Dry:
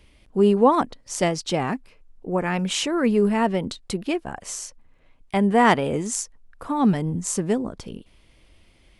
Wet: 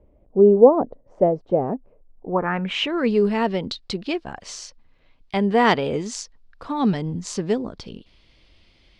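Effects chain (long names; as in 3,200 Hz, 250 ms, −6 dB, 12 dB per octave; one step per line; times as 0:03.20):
low-pass filter sweep 600 Hz → 4,500 Hz, 0:02.10–0:03.04
dynamic equaliser 440 Hz, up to +4 dB, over −31 dBFS, Q 3.7
level −1.5 dB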